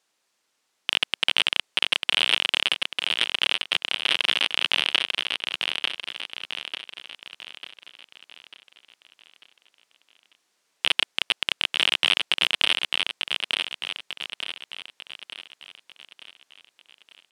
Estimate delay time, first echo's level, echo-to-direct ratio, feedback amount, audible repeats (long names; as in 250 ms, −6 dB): 895 ms, −4.0 dB, −3.0 dB, 46%, 5